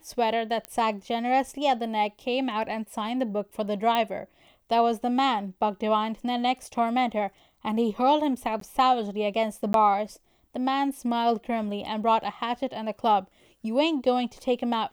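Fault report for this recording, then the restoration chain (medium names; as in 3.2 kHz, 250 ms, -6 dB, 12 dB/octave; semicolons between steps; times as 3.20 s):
0.65 s: pop -18 dBFS
3.95 s: pop -13 dBFS
8.60–8.61 s: dropout 13 ms
9.73–9.74 s: dropout 12 ms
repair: de-click; interpolate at 8.60 s, 13 ms; interpolate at 9.73 s, 12 ms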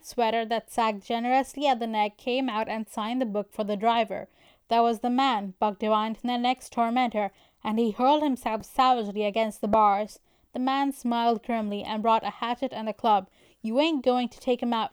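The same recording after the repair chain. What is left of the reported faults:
nothing left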